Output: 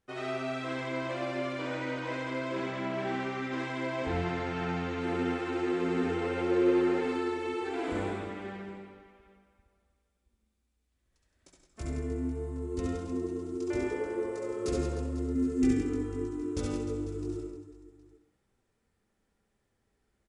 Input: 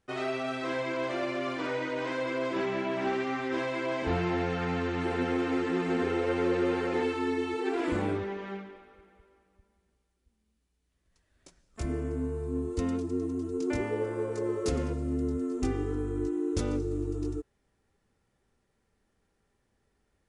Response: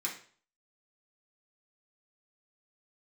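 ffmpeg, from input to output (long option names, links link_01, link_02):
-filter_complex "[0:a]asettb=1/sr,asplit=3[link_01][link_02][link_03];[link_01]atrim=end=15.354[link_04];[link_02]atrim=start=15.35:end=15.82,asetpts=PTS-STARTPTS,afade=type=in:duration=0.004:curve=qsin,afade=type=out:start_time=0.466:duration=0.004:curve=qsin,equalizer=frequency=250:width_type=o:width=1:gain=9,equalizer=frequency=1000:width_type=o:width=1:gain=-10,equalizer=frequency=2000:width_type=o:width=1:gain=9,equalizer=frequency=8000:width_type=o:width=1:gain=4[link_05];[link_03]atrim=start=15.816[link_06];[link_04][link_05]acrossfade=duration=0.004:curve1=hsin:curve2=qsin[link_07];[link_07][link_06]acrossfade=duration=0.004:curve1=qsin:curve2=hsin,aecho=1:1:70|168|305.2|497.3|766.2:0.631|0.398|0.251|0.158|0.1,asplit=2[link_08][link_09];[1:a]atrim=start_sample=2205,adelay=63[link_10];[link_09][link_10]afir=irnorm=-1:irlink=0,volume=-9dB[link_11];[link_08][link_11]amix=inputs=2:normalize=0,volume=-5dB"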